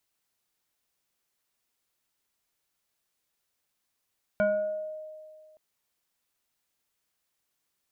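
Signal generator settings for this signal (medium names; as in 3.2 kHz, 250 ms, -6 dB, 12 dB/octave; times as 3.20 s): FM tone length 1.17 s, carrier 621 Hz, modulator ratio 1.33, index 0.86, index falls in 0.90 s exponential, decay 2.03 s, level -20 dB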